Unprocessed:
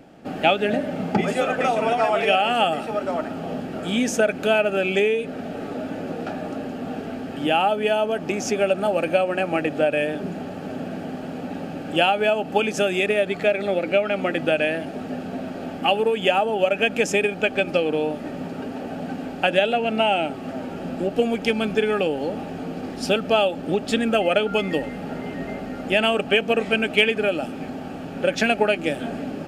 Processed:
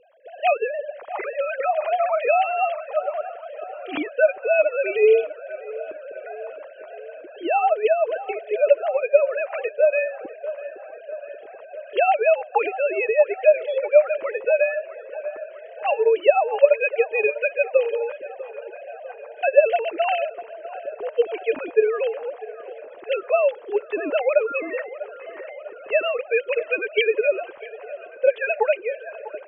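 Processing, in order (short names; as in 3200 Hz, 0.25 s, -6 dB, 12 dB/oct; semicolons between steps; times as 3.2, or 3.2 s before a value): sine-wave speech; band-limited delay 0.647 s, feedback 63%, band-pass 1000 Hz, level -14 dB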